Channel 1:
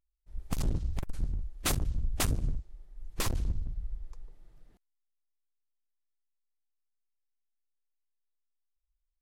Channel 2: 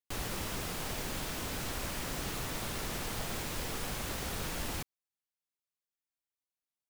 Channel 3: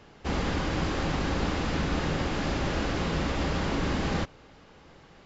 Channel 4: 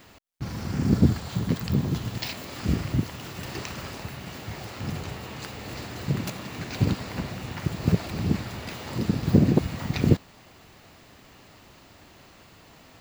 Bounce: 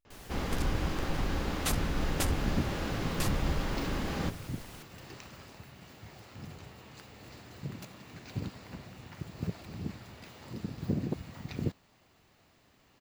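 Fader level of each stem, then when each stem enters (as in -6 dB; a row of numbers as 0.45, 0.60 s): -2.5, -12.5, -6.0, -13.5 dB; 0.00, 0.00, 0.05, 1.55 s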